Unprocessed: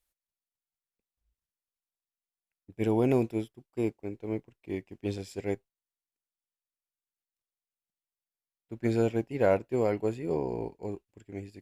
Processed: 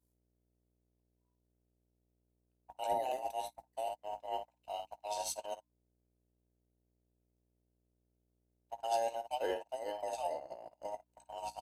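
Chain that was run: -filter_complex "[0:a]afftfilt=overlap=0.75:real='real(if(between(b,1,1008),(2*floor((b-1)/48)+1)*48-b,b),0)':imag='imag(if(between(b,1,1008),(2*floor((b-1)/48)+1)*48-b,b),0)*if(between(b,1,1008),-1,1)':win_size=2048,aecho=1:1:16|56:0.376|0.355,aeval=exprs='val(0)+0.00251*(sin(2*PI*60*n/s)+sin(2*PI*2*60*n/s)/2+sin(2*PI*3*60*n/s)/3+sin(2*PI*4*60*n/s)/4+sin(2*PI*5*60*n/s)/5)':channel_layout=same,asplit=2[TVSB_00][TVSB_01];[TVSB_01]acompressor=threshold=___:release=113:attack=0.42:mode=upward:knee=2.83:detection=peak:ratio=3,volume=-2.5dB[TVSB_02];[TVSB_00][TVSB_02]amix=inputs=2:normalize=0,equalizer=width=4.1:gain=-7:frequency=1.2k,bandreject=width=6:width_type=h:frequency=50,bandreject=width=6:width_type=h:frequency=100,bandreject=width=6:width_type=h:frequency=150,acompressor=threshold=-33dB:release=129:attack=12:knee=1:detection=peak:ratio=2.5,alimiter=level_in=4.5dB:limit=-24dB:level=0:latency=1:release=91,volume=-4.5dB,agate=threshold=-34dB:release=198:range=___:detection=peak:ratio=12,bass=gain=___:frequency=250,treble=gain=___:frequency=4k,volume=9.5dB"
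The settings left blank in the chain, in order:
-28dB, -41dB, -12, 11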